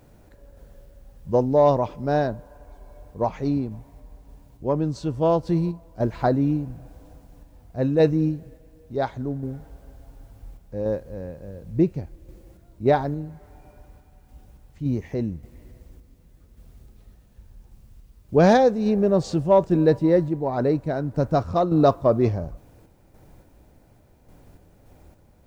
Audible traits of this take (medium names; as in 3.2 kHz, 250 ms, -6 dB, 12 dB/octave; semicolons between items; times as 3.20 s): a quantiser's noise floor 12-bit, dither triangular; random-step tremolo